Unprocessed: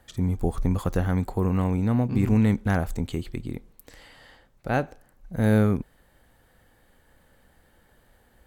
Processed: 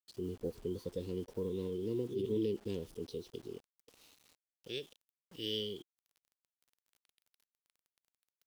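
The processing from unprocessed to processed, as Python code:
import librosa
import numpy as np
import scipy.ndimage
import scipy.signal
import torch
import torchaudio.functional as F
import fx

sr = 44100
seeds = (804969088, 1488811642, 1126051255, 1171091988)

y = fx.filter_sweep_bandpass(x, sr, from_hz=1000.0, to_hz=2300.0, start_s=4.23, end_s=5.05, q=3.8)
y = scipy.signal.sosfilt(scipy.signal.cheby2(4, 40, [610.0, 1600.0], 'bandstop', fs=sr, output='sos'), y)
y = fx.quant_dither(y, sr, seeds[0], bits=12, dither='none')
y = fx.formant_shift(y, sr, semitones=5)
y = F.gain(torch.from_numpy(y), 12.0).numpy()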